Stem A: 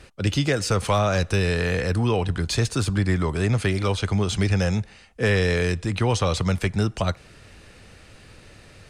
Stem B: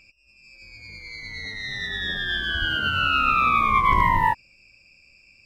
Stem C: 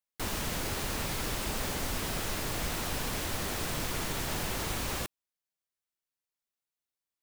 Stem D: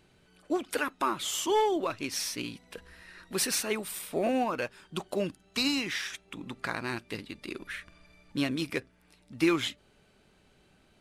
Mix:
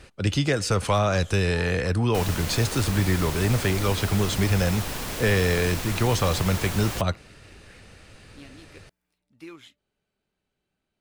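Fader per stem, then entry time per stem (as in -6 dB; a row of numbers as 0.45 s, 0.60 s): -1.0 dB, mute, +2.0 dB, -17.5 dB; 0.00 s, mute, 1.95 s, 0.00 s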